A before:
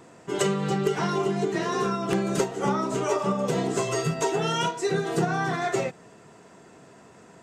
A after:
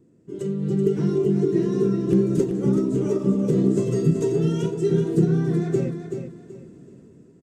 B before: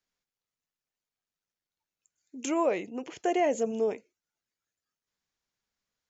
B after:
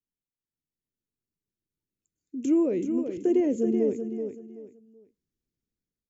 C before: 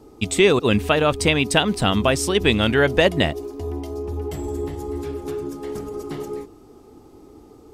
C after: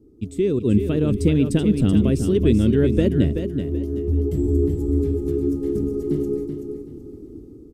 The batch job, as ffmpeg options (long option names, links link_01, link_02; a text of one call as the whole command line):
ffmpeg -i in.wav -filter_complex "[0:a]firequalizer=gain_entry='entry(340,0);entry(740,-26);entry(1600,-22);entry(9800,-15)':delay=0.05:min_phase=1,dynaudnorm=framelen=190:gausssize=7:maxgain=12dB,asplit=2[link_01][link_02];[link_02]aecho=0:1:380|760|1140:0.422|0.114|0.0307[link_03];[link_01][link_03]amix=inputs=2:normalize=0,volume=-3.5dB" out.wav